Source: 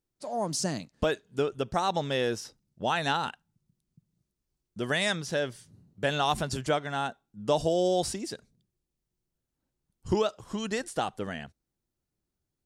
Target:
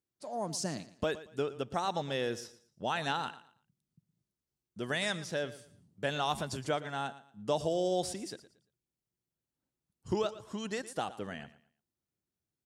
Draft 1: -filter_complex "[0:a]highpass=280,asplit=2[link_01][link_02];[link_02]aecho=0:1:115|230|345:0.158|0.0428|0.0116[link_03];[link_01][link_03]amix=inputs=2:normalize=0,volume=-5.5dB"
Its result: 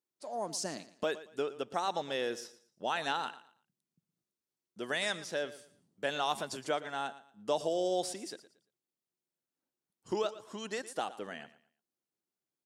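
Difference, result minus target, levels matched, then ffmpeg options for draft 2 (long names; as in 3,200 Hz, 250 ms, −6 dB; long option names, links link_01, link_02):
125 Hz band −9.5 dB
-filter_complex "[0:a]highpass=80,asplit=2[link_01][link_02];[link_02]aecho=0:1:115|230|345:0.158|0.0428|0.0116[link_03];[link_01][link_03]amix=inputs=2:normalize=0,volume=-5.5dB"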